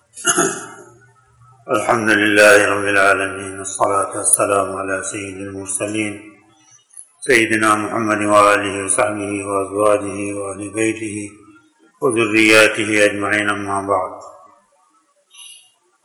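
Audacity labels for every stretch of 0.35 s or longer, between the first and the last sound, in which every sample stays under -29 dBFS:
0.810000	1.680000	silence
6.200000	6.970000	silence
11.290000	12.020000	silence
14.300000	15.390000	silence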